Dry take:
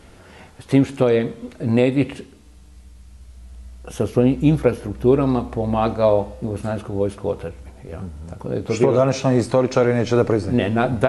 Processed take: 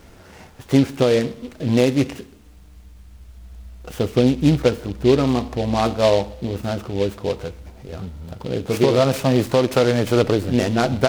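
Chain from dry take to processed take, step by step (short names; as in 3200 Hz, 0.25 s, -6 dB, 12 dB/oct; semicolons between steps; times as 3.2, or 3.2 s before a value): noise-modulated delay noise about 3000 Hz, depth 0.047 ms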